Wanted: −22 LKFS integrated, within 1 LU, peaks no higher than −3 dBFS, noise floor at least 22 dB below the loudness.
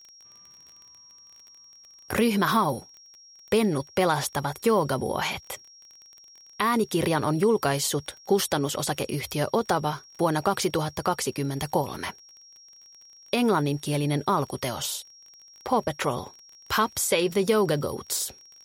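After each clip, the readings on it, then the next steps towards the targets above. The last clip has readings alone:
crackle rate 26 per second; interfering tone 5,600 Hz; level of the tone −49 dBFS; integrated loudness −26.0 LKFS; sample peak −9.0 dBFS; target loudness −22.0 LKFS
→ click removal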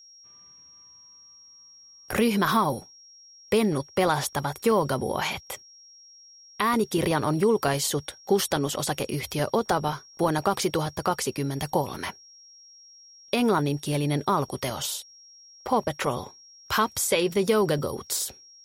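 crackle rate 0.27 per second; interfering tone 5,600 Hz; level of the tone −49 dBFS
→ notch filter 5,600 Hz, Q 30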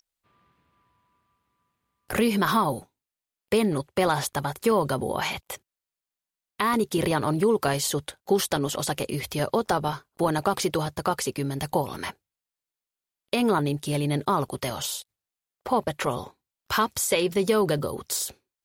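interfering tone none found; integrated loudness −26.0 LKFS; sample peak −9.0 dBFS; target loudness −22.0 LKFS
→ level +4 dB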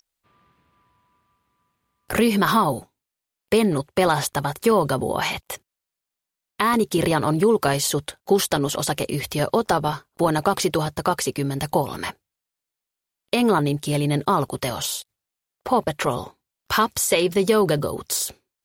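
integrated loudness −22.0 LKFS; sample peak −5.0 dBFS; background noise floor −86 dBFS

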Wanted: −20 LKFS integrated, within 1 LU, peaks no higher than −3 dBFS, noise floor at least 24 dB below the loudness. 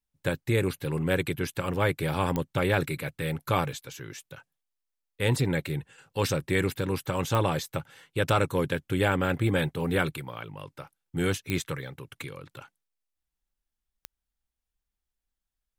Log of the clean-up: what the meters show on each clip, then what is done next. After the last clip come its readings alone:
number of clicks 4; integrated loudness −28.5 LKFS; sample peak −10.5 dBFS; target loudness −20.0 LKFS
→ click removal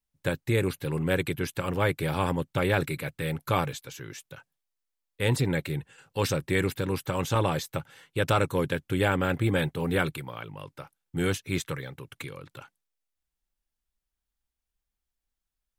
number of clicks 0; integrated loudness −28.5 LKFS; sample peak −10.5 dBFS; target loudness −20.0 LKFS
→ level +8.5 dB
brickwall limiter −3 dBFS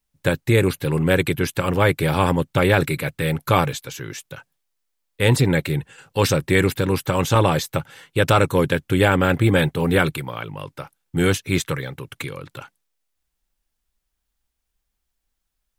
integrated loudness −20.0 LKFS; sample peak −3.0 dBFS; background noise floor −78 dBFS

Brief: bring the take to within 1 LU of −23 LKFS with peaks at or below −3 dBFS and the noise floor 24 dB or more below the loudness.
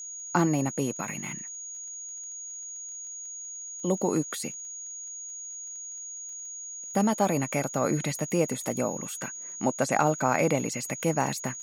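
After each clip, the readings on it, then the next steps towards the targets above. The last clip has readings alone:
crackle rate 24 per second; interfering tone 6,700 Hz; level of the tone −37 dBFS; integrated loudness −30.0 LKFS; sample peak −9.5 dBFS; target loudness −23.0 LKFS
→ click removal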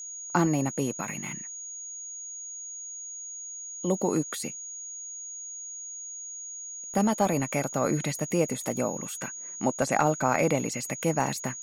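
crackle rate 0.086 per second; interfering tone 6,700 Hz; level of the tone −37 dBFS
→ notch filter 6,700 Hz, Q 30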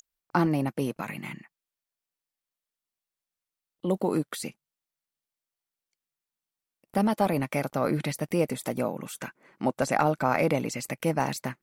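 interfering tone none found; integrated loudness −28.5 LKFS; sample peak −9.5 dBFS; target loudness −23.0 LKFS
→ level +5.5 dB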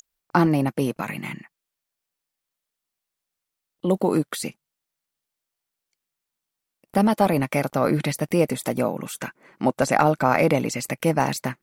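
integrated loudness −23.0 LKFS; sample peak −4.0 dBFS; background noise floor −85 dBFS

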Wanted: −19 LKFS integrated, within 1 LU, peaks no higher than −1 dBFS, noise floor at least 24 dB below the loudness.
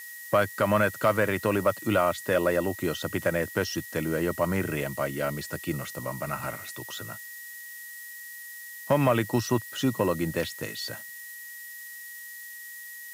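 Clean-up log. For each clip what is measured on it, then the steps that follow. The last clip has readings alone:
interfering tone 1,900 Hz; level of the tone −42 dBFS; background noise floor −42 dBFS; target noise floor −52 dBFS; integrated loudness −27.5 LKFS; sample peak −10.5 dBFS; target loudness −19.0 LKFS
→ notch filter 1,900 Hz, Q 30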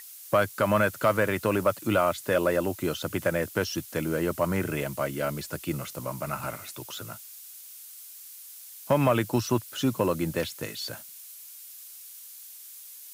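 interfering tone none found; background noise floor −46 dBFS; target noise floor −52 dBFS
→ broadband denoise 6 dB, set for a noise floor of −46 dBFS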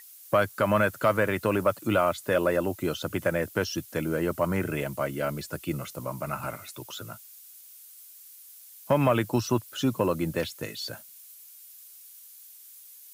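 background noise floor −50 dBFS; target noise floor −52 dBFS
→ broadband denoise 6 dB, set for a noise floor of −50 dBFS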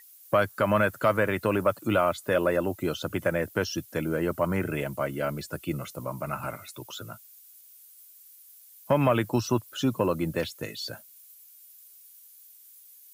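background noise floor −53 dBFS; integrated loudness −28.0 LKFS; sample peak −11.5 dBFS; target loudness −19.0 LKFS
→ level +9 dB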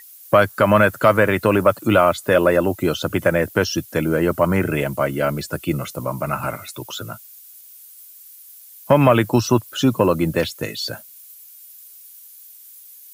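integrated loudness −19.0 LKFS; sample peak −2.5 dBFS; background noise floor −44 dBFS

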